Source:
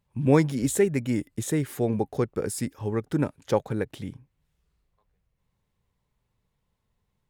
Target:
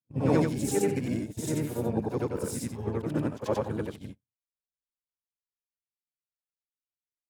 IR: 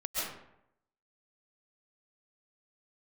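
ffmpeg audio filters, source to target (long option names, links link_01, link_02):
-filter_complex "[0:a]afftfilt=real='re':imag='-im':win_size=8192:overlap=0.75,equalizer=frequency=1900:width=4.8:gain=-5,asplit=4[link_01][link_02][link_03][link_04];[link_02]asetrate=33038,aresample=44100,atempo=1.33484,volume=-8dB[link_05];[link_03]asetrate=52444,aresample=44100,atempo=0.840896,volume=-12dB[link_06];[link_04]asetrate=88200,aresample=44100,atempo=0.5,volume=-15dB[link_07];[link_01][link_05][link_06][link_07]amix=inputs=4:normalize=0,agate=range=-39dB:threshold=-38dB:ratio=16:detection=peak"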